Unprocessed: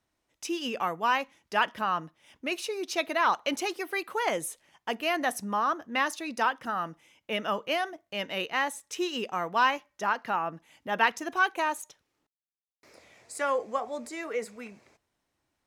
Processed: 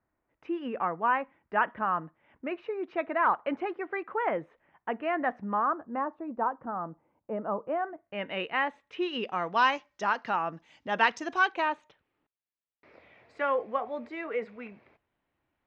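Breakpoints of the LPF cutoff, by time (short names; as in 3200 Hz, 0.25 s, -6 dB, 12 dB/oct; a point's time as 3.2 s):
LPF 24 dB/oct
5.56 s 1900 Hz
6.03 s 1100 Hz
7.63 s 1100 Hz
8.33 s 2800 Hz
8.92 s 2800 Hz
9.69 s 5900 Hz
11.39 s 5900 Hz
11.8 s 3000 Hz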